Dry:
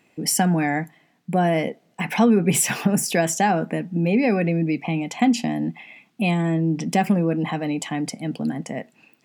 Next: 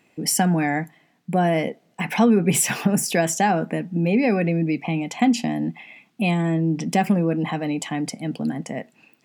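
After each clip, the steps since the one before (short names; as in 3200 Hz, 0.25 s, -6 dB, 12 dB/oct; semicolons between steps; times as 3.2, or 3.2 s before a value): nothing audible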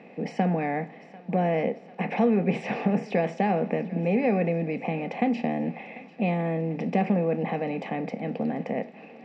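per-bin compression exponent 0.6; speaker cabinet 180–3200 Hz, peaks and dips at 190 Hz +5 dB, 320 Hz -5 dB, 500 Hz +7 dB, 1000 Hz -4 dB, 1500 Hz -9 dB, 3200 Hz -8 dB; thinning echo 0.744 s, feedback 67%, high-pass 520 Hz, level -18 dB; gain -8 dB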